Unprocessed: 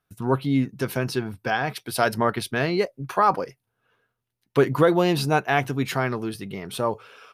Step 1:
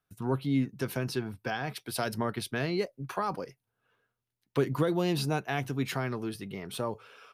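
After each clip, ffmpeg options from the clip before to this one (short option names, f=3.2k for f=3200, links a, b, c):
-filter_complex "[0:a]acrossover=split=350|3000[a][b][c];[b]acompressor=threshold=-28dB:ratio=2.5[d];[a][d][c]amix=inputs=3:normalize=0,volume=-5.5dB"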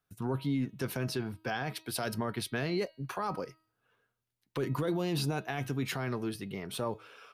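-af "bandreject=f=318:t=h:w=4,bandreject=f=636:t=h:w=4,bandreject=f=954:t=h:w=4,bandreject=f=1.272k:t=h:w=4,bandreject=f=1.59k:t=h:w=4,bandreject=f=1.908k:t=h:w=4,bandreject=f=2.226k:t=h:w=4,bandreject=f=2.544k:t=h:w=4,bandreject=f=2.862k:t=h:w=4,bandreject=f=3.18k:t=h:w=4,bandreject=f=3.498k:t=h:w=4,bandreject=f=3.816k:t=h:w=4,bandreject=f=4.134k:t=h:w=4,bandreject=f=4.452k:t=h:w=4,bandreject=f=4.77k:t=h:w=4,alimiter=limit=-23.5dB:level=0:latency=1:release=11"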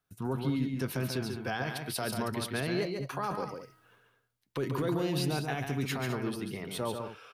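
-af "areverse,acompressor=mode=upward:threshold=-52dB:ratio=2.5,areverse,aecho=1:1:140|207:0.531|0.266"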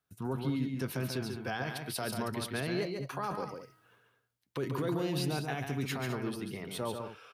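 -af "highpass=40,volume=-2dB"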